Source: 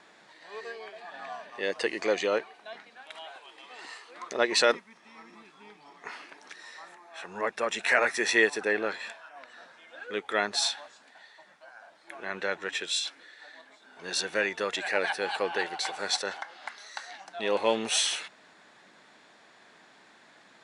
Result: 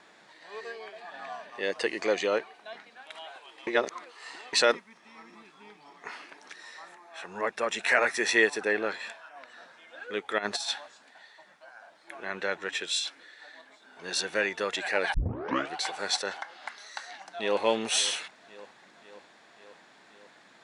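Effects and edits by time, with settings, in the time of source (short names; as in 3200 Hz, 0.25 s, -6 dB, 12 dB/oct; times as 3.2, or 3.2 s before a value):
3.67–4.53 reverse
10.38–10.78 negative-ratio compressor -31 dBFS, ratio -0.5
15.14 tape start 0.62 s
16.55–17.63 echo throw 0.54 s, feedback 70%, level -17.5 dB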